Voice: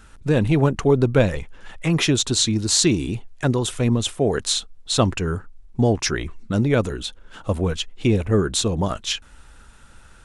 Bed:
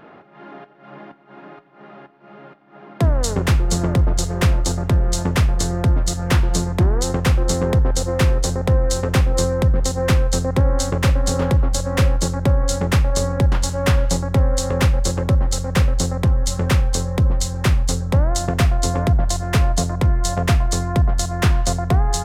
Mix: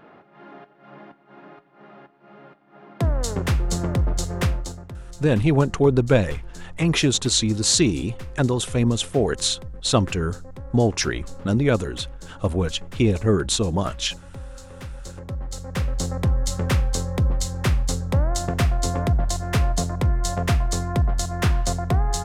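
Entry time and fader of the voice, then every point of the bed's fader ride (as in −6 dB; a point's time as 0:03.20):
4.95 s, −0.5 dB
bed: 0:04.44 −5 dB
0:04.98 −21.5 dB
0:14.77 −21.5 dB
0:16.17 −4 dB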